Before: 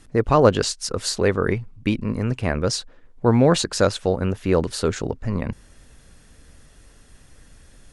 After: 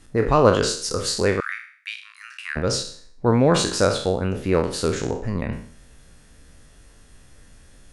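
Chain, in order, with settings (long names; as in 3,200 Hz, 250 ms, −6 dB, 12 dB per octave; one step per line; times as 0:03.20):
peak hold with a decay on every bin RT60 0.52 s
0:01.40–0:02.56: Butterworth high-pass 1,300 Hz 48 dB per octave
level −2 dB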